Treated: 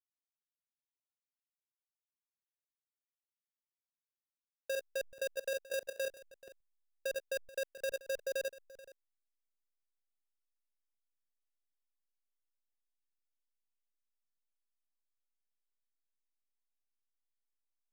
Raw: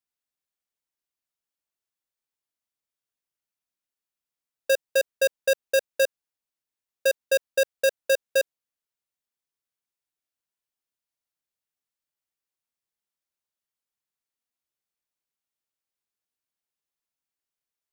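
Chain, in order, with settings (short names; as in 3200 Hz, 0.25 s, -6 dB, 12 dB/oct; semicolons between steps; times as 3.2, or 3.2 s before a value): regenerating reverse delay 0.216 s, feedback 45%, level -11.5 dB; level quantiser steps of 15 dB; backlash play -45 dBFS; gain -4 dB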